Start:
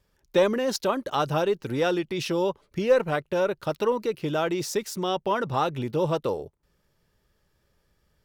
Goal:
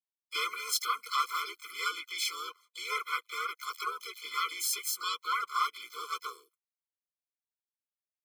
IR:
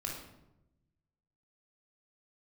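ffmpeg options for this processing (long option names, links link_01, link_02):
-filter_complex "[0:a]agate=range=-44dB:threshold=-47dB:ratio=16:detection=peak,highpass=frequency=1000:width=0.5412,highpass=frequency=1000:width=1.3066,highshelf=frequency=8300:gain=10,asplit=4[link_01][link_02][link_03][link_04];[link_02]asetrate=37084,aresample=44100,atempo=1.18921,volume=-5dB[link_05];[link_03]asetrate=58866,aresample=44100,atempo=0.749154,volume=-3dB[link_06];[link_04]asetrate=66075,aresample=44100,atempo=0.66742,volume=-10dB[link_07];[link_01][link_05][link_06][link_07]amix=inputs=4:normalize=0,afftfilt=real='re*eq(mod(floor(b*sr/1024/500),2),0)':imag='im*eq(mod(floor(b*sr/1024/500),2),0)':win_size=1024:overlap=0.75"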